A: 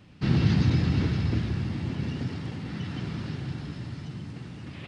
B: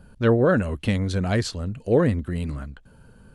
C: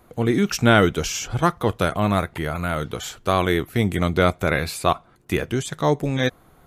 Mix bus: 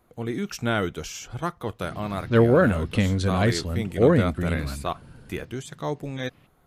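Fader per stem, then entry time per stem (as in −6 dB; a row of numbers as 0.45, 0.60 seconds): −17.5, +1.0, −9.5 decibels; 1.60, 2.10, 0.00 seconds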